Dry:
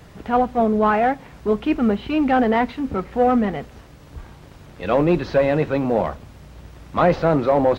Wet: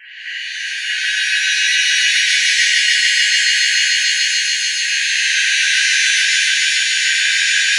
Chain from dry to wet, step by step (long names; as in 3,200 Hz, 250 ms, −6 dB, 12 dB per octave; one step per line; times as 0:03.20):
pitch shifter gated in a rhythm −4 semitones, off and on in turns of 296 ms
gate pattern "xxx..xxxx." 146 BPM
linear-phase brick-wall band-pass 1,500–3,200 Hz
echo machine with several playback heads 145 ms, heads all three, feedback 70%, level −7.5 dB
downward compressor, threshold −37 dBFS, peak gain reduction 11.5 dB
boost into a limiter +29.5 dB
reverb with rising layers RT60 3 s, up +7 semitones, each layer −2 dB, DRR −10 dB
level −15.5 dB